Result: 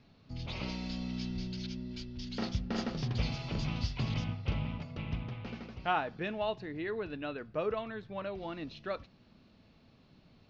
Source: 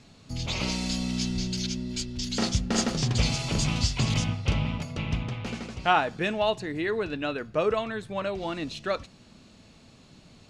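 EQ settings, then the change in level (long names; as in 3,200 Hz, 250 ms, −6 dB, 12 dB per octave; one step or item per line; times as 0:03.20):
low-pass with resonance 5,700 Hz, resonance Q 2.3
high-frequency loss of the air 300 metres
−7.5 dB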